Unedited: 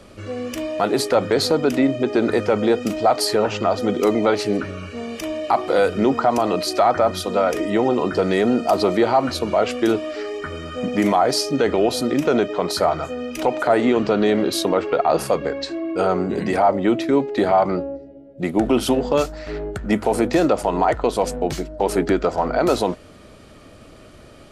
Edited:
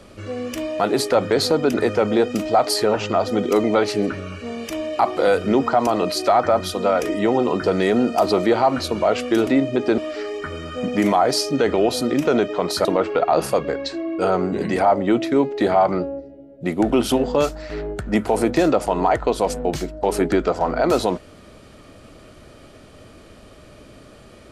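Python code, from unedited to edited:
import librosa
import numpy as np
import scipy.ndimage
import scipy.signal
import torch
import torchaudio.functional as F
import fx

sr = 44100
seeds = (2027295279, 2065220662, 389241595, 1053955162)

y = fx.edit(x, sr, fx.move(start_s=1.74, length_s=0.51, to_s=9.98),
    fx.cut(start_s=12.85, length_s=1.77), tone=tone)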